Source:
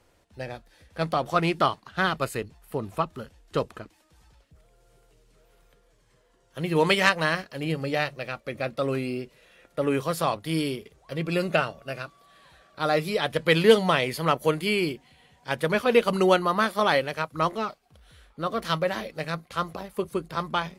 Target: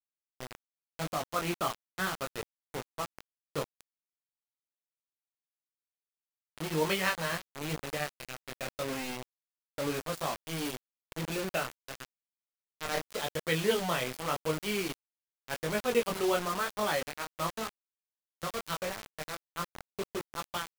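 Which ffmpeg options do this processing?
ffmpeg -i in.wav -filter_complex "[0:a]asettb=1/sr,asplit=3[link_01][link_02][link_03];[link_01]atrim=end=12.044[link_04];[link_02]atrim=start=12.04:end=13.16,asetpts=PTS-STARTPTS,afade=type=in:duration=0.004:curve=qsin,afade=type=out:start_time=1.116:duration=0.004:curve=qsin,aeval=exprs='0.316*(cos(1*acos(clip(val(0)/0.316,-1,1)))-cos(1*PI/2))+0.00794*(cos(6*acos(clip(val(0)/0.316,-1,1)))-cos(6*PI/2))+0.0891*(cos(7*acos(clip(val(0)/0.316,-1,1)))-cos(7*PI/2))+0.00501*(cos(8*acos(clip(val(0)/0.316,-1,1)))-cos(8*PI/2))':channel_layout=same[link_05];[link_03]atrim=start=13.156[link_06];[link_04][link_05]acrossfade=duration=0.004:curve1=hsin:curve2=qsin[link_07];[link_07][link_06]acrossfade=duration=0.004:curve1=qsin:curve2=hsin,flanger=delay=19:depth=5:speed=0.89,acrusher=bits=4:mix=0:aa=0.000001,volume=-6.5dB" out.wav

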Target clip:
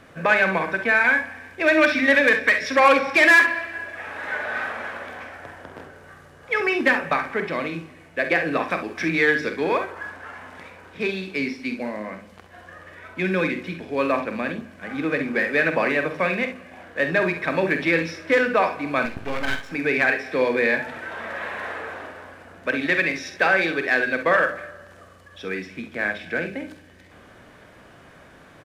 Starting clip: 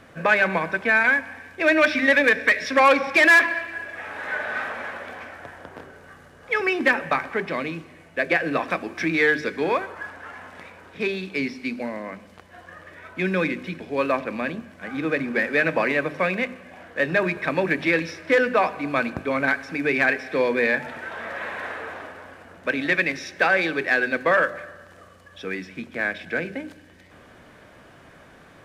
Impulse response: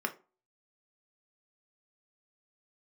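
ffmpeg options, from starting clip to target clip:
-filter_complex "[0:a]asettb=1/sr,asplit=3[link_01][link_02][link_03];[link_01]atrim=end=19.054[link_04];[link_02]atrim=start=19.05:end=19.71,asetpts=PTS-STARTPTS,afade=type=in:duration=0.004:curve=qsin,afade=type=out:start_time=0.656:duration=0.004:curve=qsin,aeval=exprs='max(val(0),0)':channel_layout=same[link_05];[link_03]atrim=start=19.706[link_06];[link_04][link_05]acrossfade=duration=0.004:curve1=hsin:curve2=qsin[link_07];[link_07][link_06]acrossfade=duration=0.004:curve1=qsin:curve2=hsin,aecho=1:1:47|66:0.335|0.266"

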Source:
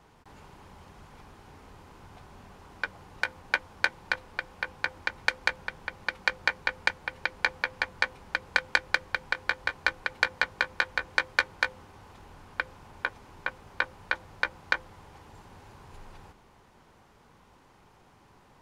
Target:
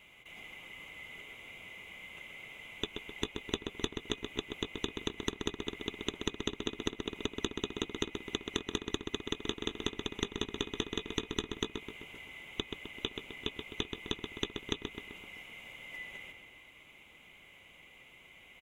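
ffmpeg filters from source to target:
ffmpeg -i in.wav -filter_complex "[0:a]afftfilt=real='real(if(lt(b,920),b+92*(1-2*mod(floor(b/92),2)),b),0)':imag='imag(if(lt(b,920),b+92*(1-2*mod(floor(b/92),2)),b),0)':win_size=2048:overlap=0.75,equalizer=frequency=4700:width_type=o:width=1.9:gain=-12.5,acompressor=threshold=-38dB:ratio=6,asplit=2[link_01][link_02];[link_02]adelay=129,lowpass=frequency=3000:poles=1,volume=-5dB,asplit=2[link_03][link_04];[link_04]adelay=129,lowpass=frequency=3000:poles=1,volume=0.55,asplit=2[link_05][link_06];[link_06]adelay=129,lowpass=frequency=3000:poles=1,volume=0.55,asplit=2[link_07][link_08];[link_08]adelay=129,lowpass=frequency=3000:poles=1,volume=0.55,asplit=2[link_09][link_10];[link_10]adelay=129,lowpass=frequency=3000:poles=1,volume=0.55,asplit=2[link_11][link_12];[link_12]adelay=129,lowpass=frequency=3000:poles=1,volume=0.55,asplit=2[link_13][link_14];[link_14]adelay=129,lowpass=frequency=3000:poles=1,volume=0.55[link_15];[link_03][link_05][link_07][link_09][link_11][link_13][link_15]amix=inputs=7:normalize=0[link_16];[link_01][link_16]amix=inputs=2:normalize=0,volume=6.5dB" out.wav

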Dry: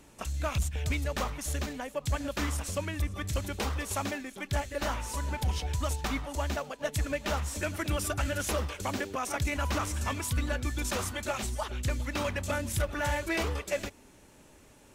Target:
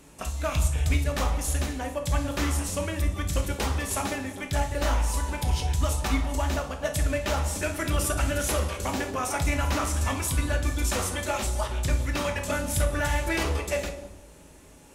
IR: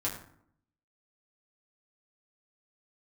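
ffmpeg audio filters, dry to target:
-filter_complex "[0:a]asplit=2[link_01][link_02];[1:a]atrim=start_sample=2205,asetrate=23814,aresample=44100,highshelf=frequency=9200:gain=11.5[link_03];[link_02][link_03]afir=irnorm=-1:irlink=0,volume=-7.5dB[link_04];[link_01][link_04]amix=inputs=2:normalize=0,volume=-1.5dB"

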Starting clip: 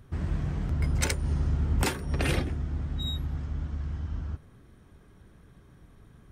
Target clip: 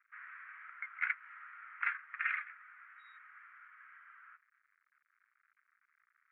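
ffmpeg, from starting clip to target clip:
ffmpeg -i in.wav -af "aeval=exprs='sgn(val(0))*max(abs(val(0))-0.00251,0)':channel_layout=same,asuperpass=centerf=1700:order=8:qfactor=1.6,volume=2.5dB" out.wav

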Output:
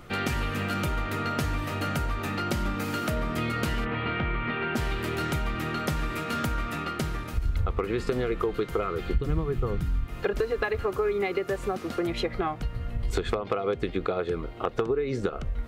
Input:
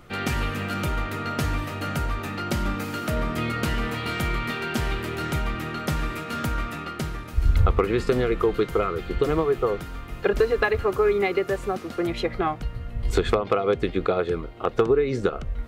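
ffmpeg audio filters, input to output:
ffmpeg -i in.wav -filter_complex "[0:a]asplit=3[link_01][link_02][link_03];[link_01]afade=type=out:start_time=3.84:duration=0.02[link_04];[link_02]lowpass=frequency=2900:width=0.5412,lowpass=frequency=2900:width=1.3066,afade=type=in:start_time=3.84:duration=0.02,afade=type=out:start_time=4.75:duration=0.02[link_05];[link_03]afade=type=in:start_time=4.75:duration=0.02[link_06];[link_04][link_05][link_06]amix=inputs=3:normalize=0,asplit=3[link_07][link_08][link_09];[link_07]afade=type=out:start_time=9.13:duration=0.02[link_10];[link_08]asubboost=boost=8:cutoff=200,afade=type=in:start_time=9.13:duration=0.02,afade=type=out:start_time=10.05:duration=0.02[link_11];[link_09]afade=type=in:start_time=10.05:duration=0.02[link_12];[link_10][link_11][link_12]amix=inputs=3:normalize=0,acompressor=threshold=-28dB:ratio=3,volume=2dB" out.wav

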